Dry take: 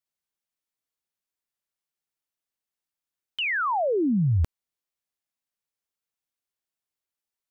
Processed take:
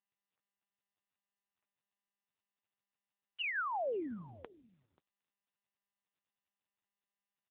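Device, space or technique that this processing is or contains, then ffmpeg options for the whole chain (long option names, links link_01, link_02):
satellite phone: -af "highpass=320,lowpass=3200,bass=frequency=250:gain=-6,treble=frequency=4000:gain=4,aecho=1:1:534:0.0631,volume=-7dB" -ar 8000 -c:a libopencore_amrnb -b:a 6700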